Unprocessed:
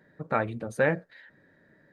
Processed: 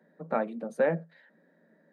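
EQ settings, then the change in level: rippled Chebyshev high-pass 160 Hz, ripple 6 dB; peaking EQ 2.1 kHz -4.5 dB 2.5 oct; treble shelf 5.6 kHz -6 dB; +2.0 dB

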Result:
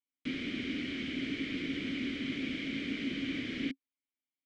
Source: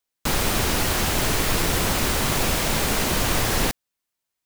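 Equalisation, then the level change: vowel filter i; distance through air 120 m; +1.0 dB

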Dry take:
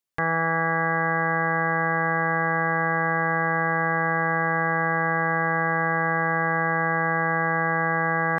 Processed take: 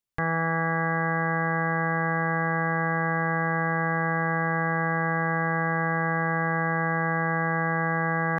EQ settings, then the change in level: bass shelf 150 Hz +11 dB; -3.5 dB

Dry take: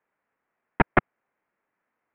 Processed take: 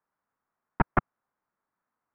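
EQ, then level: peaking EQ 490 Hz -9 dB 2.2 oct; resonant high shelf 1.6 kHz -9.5 dB, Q 1.5; 0.0 dB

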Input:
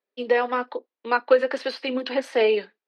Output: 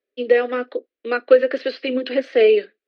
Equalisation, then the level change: distance through air 240 m; static phaser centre 380 Hz, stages 4; +7.5 dB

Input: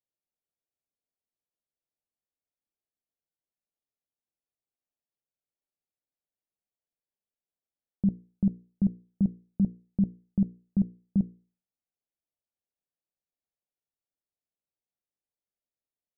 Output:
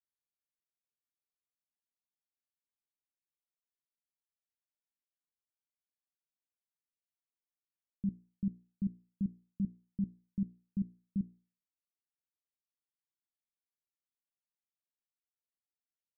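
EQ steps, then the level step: four-pole ladder low-pass 360 Hz, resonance 25%; -5.5 dB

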